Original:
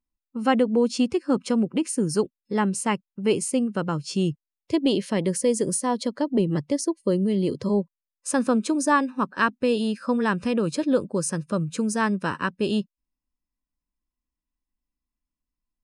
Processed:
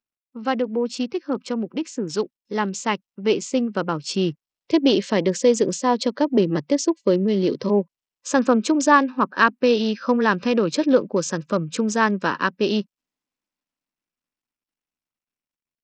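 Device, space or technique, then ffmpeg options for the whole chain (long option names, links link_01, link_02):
Bluetooth headset: -filter_complex "[0:a]asettb=1/sr,asplit=3[link_01][link_02][link_03];[link_01]atrim=end=2.134[link_04];[link_02]atrim=start=2.13:end=3.24,asetpts=PTS-STARTPTS,afade=type=in:duration=0.004:curve=qsin,afade=type=out:start_time=1.106:duration=0.004:curve=qsin,highshelf=frequency=2400:gain=4[link_05];[link_03]atrim=start=3.236[link_06];[link_04][link_05]acrossfade=duration=0.004:curve1=hsin:curve2=qsin[link_07];[link_07][link_06]acrossfade=duration=0.004:curve1=qsin:curve2=hsin,highpass=230,dynaudnorm=framelen=600:gausssize=11:maxgain=14dB,aresample=16000,aresample=44100,volume=-1.5dB" -ar 44100 -c:a sbc -b:a 64k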